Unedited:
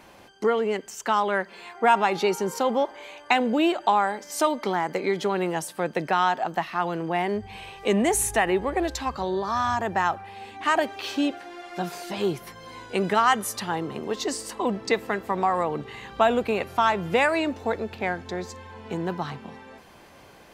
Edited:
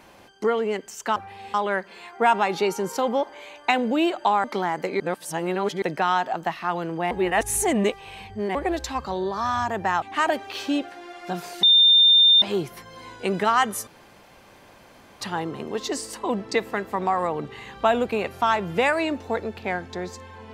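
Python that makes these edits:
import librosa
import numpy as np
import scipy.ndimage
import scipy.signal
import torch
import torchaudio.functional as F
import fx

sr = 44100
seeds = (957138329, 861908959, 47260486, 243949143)

y = fx.edit(x, sr, fx.cut(start_s=4.06, length_s=0.49),
    fx.reverse_span(start_s=5.11, length_s=0.82),
    fx.reverse_span(start_s=7.22, length_s=1.44),
    fx.move(start_s=10.13, length_s=0.38, to_s=1.16),
    fx.insert_tone(at_s=12.12, length_s=0.79, hz=3610.0, db=-11.5),
    fx.insert_room_tone(at_s=13.57, length_s=1.34), tone=tone)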